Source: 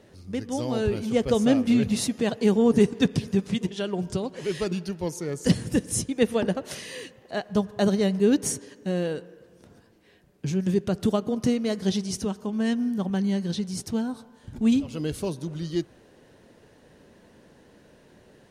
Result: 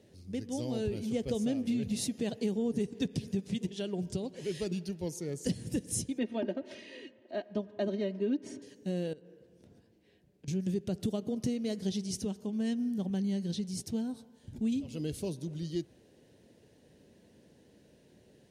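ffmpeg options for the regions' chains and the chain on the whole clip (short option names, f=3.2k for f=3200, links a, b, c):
-filter_complex "[0:a]asettb=1/sr,asplit=3[a][b][c];[a]atrim=end=6.184[d];[b]atrim=start=6.18:end=8.62,asetpts=PTS-STARTPTS,afade=t=in:d=0.004:c=qsin,afade=t=out:st=2.436:d=0.004:c=qsin,highpass=200,lowpass=2.5k,aecho=1:1:3.2:0.83,atrim=end_sample=107604[e];[c]atrim=start=8.616[f];[d][e]acrossfade=d=0.004:c1=hsin:c2=qsin[g];[g][f]acrossfade=d=0.004:c1=qsin:c2=hsin,asettb=1/sr,asplit=3[h][i][j];[h]atrim=end=9.134[k];[i]atrim=start=9.13:end=10.48,asetpts=PTS-STARTPTS,afade=t=in:d=0.004:c=qsin,afade=t=out:st=1.346:d=0.004:c=qsin,highshelf=f=4.6k:g=-7.5,acompressor=threshold=-42dB:ratio=10:attack=3.2:release=140:knee=1:detection=peak[l];[j]atrim=start=10.476[m];[k][l]acrossfade=d=0.004:c1=hsin:c2=qsin[n];[n][m]acrossfade=d=0.004:c1=qsin:c2=hsin,highpass=53,equalizer=f=1.2k:w=1.1:g=-12.5,acompressor=threshold=-23dB:ratio=6,volume=-5dB"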